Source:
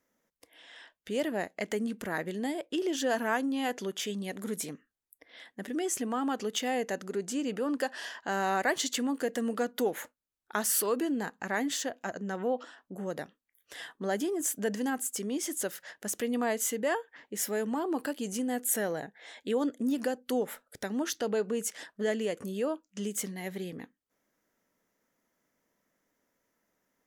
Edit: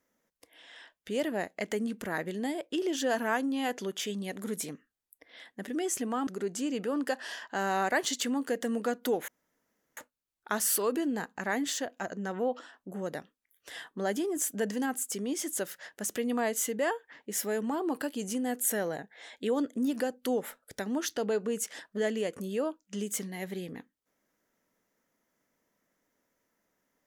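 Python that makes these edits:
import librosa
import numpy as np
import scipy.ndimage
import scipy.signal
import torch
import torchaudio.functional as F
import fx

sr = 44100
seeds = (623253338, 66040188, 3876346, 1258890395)

y = fx.edit(x, sr, fx.cut(start_s=6.27, length_s=0.73),
    fx.insert_room_tone(at_s=10.01, length_s=0.69), tone=tone)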